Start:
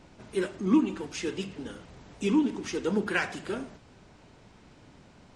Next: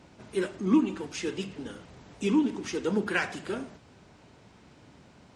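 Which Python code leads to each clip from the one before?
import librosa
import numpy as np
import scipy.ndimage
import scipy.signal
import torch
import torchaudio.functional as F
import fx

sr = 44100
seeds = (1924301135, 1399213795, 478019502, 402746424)

y = scipy.signal.sosfilt(scipy.signal.butter(2, 58.0, 'highpass', fs=sr, output='sos'), x)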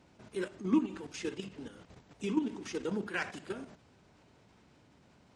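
y = fx.level_steps(x, sr, step_db=10)
y = y * 10.0 ** (-3.0 / 20.0)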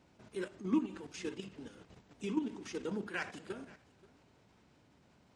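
y = x + 10.0 ** (-22.0 / 20.0) * np.pad(x, (int(530 * sr / 1000.0), 0))[:len(x)]
y = y * 10.0 ** (-3.5 / 20.0)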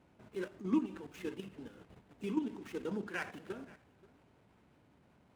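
y = scipy.signal.medfilt(x, 9)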